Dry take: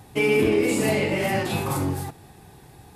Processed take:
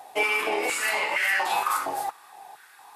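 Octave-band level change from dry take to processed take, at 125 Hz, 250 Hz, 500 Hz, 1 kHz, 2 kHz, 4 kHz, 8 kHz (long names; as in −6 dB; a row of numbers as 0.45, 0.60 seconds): below −30 dB, −18.5 dB, −9.5 dB, +5.0 dB, +4.0 dB, +1.0 dB, 0.0 dB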